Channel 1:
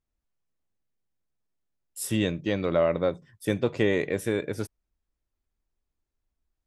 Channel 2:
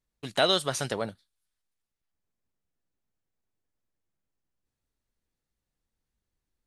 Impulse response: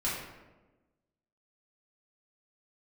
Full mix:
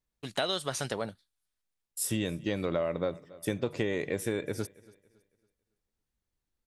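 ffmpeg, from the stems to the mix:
-filter_complex "[0:a]bass=f=250:g=0,treble=f=4000:g=4,agate=range=0.0282:threshold=0.00562:ratio=16:detection=peak,volume=0.794,asplit=2[s0][s1];[s1]volume=0.0631[s2];[1:a]volume=0.794[s3];[s2]aecho=0:1:278|556|834|1112|1390:1|0.34|0.116|0.0393|0.0134[s4];[s0][s3][s4]amix=inputs=3:normalize=0,acompressor=threshold=0.0501:ratio=6"

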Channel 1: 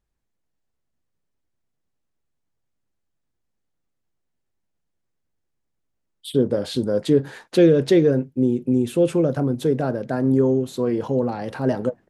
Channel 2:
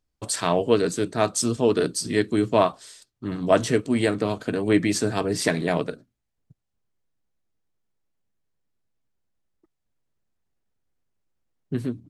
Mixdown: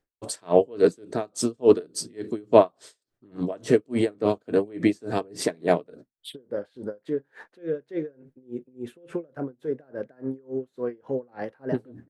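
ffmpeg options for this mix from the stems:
-filter_complex "[0:a]equalizer=f=1700:w=1.2:g=12.5,acompressor=threshold=0.0562:ratio=6,volume=0.447[s0];[1:a]volume=0.75[s1];[s0][s1]amix=inputs=2:normalize=0,equalizer=f=450:t=o:w=2.1:g=11,aeval=exprs='val(0)*pow(10,-31*(0.5-0.5*cos(2*PI*3.5*n/s))/20)':c=same"

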